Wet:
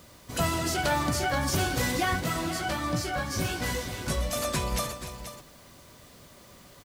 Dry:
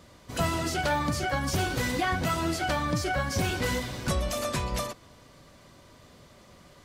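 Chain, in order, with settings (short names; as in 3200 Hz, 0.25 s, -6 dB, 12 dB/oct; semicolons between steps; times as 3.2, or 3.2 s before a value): high shelf 6700 Hz +6.5 dB; requantised 10-bit, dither triangular; 2.2–4.33 chorus 1.4 Hz, delay 17 ms, depth 2.4 ms; tapped delay 0.289/0.481 s -13.5/-11 dB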